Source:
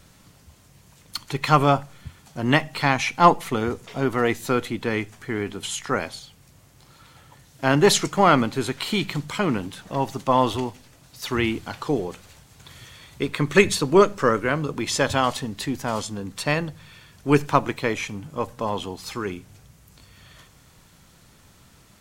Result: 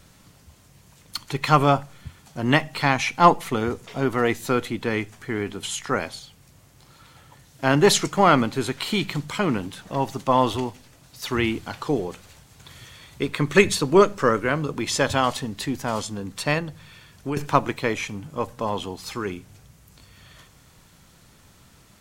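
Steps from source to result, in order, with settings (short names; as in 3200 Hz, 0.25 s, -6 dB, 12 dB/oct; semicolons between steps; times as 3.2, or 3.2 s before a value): 16.58–17.37 compressor 5:1, threshold -26 dBFS, peak gain reduction 13.5 dB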